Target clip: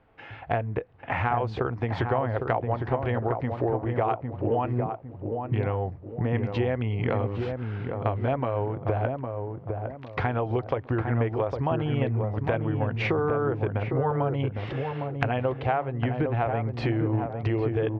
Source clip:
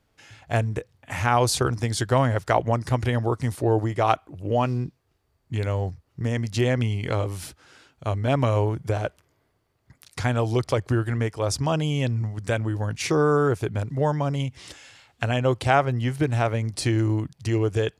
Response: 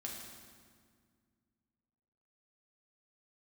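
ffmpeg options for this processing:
-filter_complex "[0:a]lowpass=frequency=2800:width=0.5412,lowpass=frequency=2800:width=1.3066,equalizer=frequency=680:width_type=o:width=1.7:gain=8,bandreject=frequency=600:width=12,acompressor=threshold=-29dB:ratio=6,asplit=2[link_01][link_02];[link_02]adelay=807,lowpass=frequency=920:poles=1,volume=-4dB,asplit=2[link_03][link_04];[link_04]adelay=807,lowpass=frequency=920:poles=1,volume=0.41,asplit=2[link_05][link_06];[link_06]adelay=807,lowpass=frequency=920:poles=1,volume=0.41,asplit=2[link_07][link_08];[link_08]adelay=807,lowpass=frequency=920:poles=1,volume=0.41,asplit=2[link_09][link_10];[link_10]adelay=807,lowpass=frequency=920:poles=1,volume=0.41[link_11];[link_01][link_03][link_05][link_07][link_09][link_11]amix=inputs=6:normalize=0,volume=4.5dB"

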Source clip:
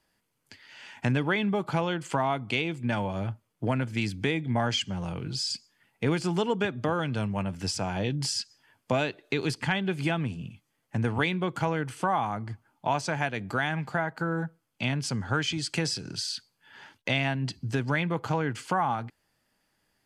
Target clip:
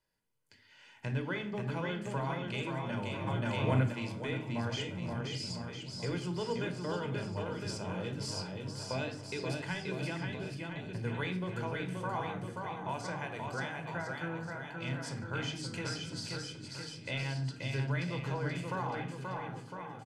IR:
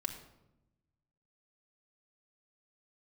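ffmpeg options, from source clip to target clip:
-filter_complex "[0:a]aecho=1:1:530|1007|1436|1823|2170:0.631|0.398|0.251|0.158|0.1[link_01];[1:a]atrim=start_sample=2205,asetrate=79380,aresample=44100[link_02];[link_01][link_02]afir=irnorm=-1:irlink=0,asplit=3[link_03][link_04][link_05];[link_03]afade=type=out:start_time=3.26:duration=0.02[link_06];[link_04]acontrast=76,afade=type=in:start_time=3.26:duration=0.02,afade=type=out:start_time=3.92:duration=0.02[link_07];[link_05]afade=type=in:start_time=3.92:duration=0.02[link_08];[link_06][link_07][link_08]amix=inputs=3:normalize=0,volume=-6.5dB"

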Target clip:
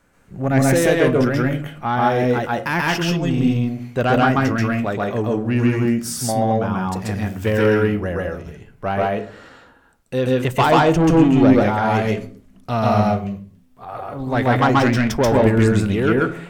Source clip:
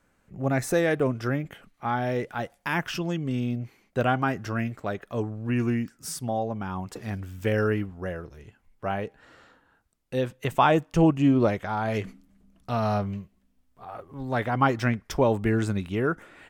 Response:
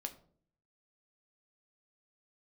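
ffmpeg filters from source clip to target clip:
-filter_complex "[0:a]asoftclip=type=tanh:threshold=-18dB,asplit=2[link_01][link_02];[1:a]atrim=start_sample=2205,afade=type=out:start_time=0.34:duration=0.01,atrim=end_sample=15435,adelay=134[link_03];[link_02][link_03]afir=irnorm=-1:irlink=0,volume=3.5dB[link_04];[link_01][link_04]amix=inputs=2:normalize=0,volume=7dB"

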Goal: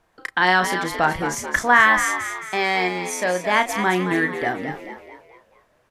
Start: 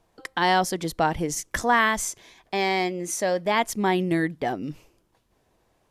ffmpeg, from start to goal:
ffmpeg -i in.wav -filter_complex "[0:a]equalizer=frequency=1600:width=1.1:gain=9.5,asplit=2[link_01][link_02];[link_02]adelay=33,volume=-9dB[link_03];[link_01][link_03]amix=inputs=2:normalize=0,asplit=2[link_04][link_05];[link_05]asplit=5[link_06][link_07][link_08][link_09][link_10];[link_06]adelay=219,afreqshift=68,volume=-8.5dB[link_11];[link_07]adelay=438,afreqshift=136,volume=-15.1dB[link_12];[link_08]adelay=657,afreqshift=204,volume=-21.6dB[link_13];[link_09]adelay=876,afreqshift=272,volume=-28.2dB[link_14];[link_10]adelay=1095,afreqshift=340,volume=-34.7dB[link_15];[link_11][link_12][link_13][link_14][link_15]amix=inputs=5:normalize=0[link_16];[link_04][link_16]amix=inputs=2:normalize=0,volume=-1dB" out.wav

